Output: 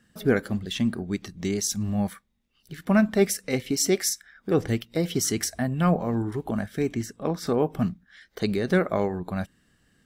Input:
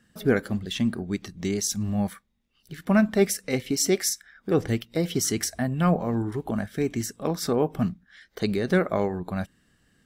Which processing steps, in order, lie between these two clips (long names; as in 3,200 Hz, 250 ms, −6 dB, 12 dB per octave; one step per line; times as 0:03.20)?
0:06.94–0:07.47: high-shelf EQ 4,300 Hz −9.5 dB